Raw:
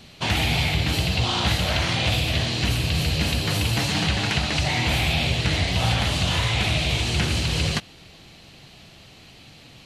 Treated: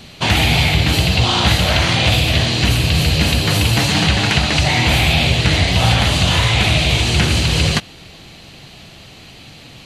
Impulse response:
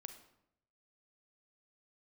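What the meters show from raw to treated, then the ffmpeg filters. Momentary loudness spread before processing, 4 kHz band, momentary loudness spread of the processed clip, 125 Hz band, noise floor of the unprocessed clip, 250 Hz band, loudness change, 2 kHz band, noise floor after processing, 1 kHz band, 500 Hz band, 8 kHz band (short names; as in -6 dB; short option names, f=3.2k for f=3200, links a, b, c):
2 LU, +8.0 dB, 2 LU, +8.0 dB, -48 dBFS, +8.0 dB, +8.0 dB, +8.0 dB, -40 dBFS, +8.0 dB, +8.0 dB, +8.0 dB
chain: -af "bandreject=f=5.4k:w=21,volume=8dB"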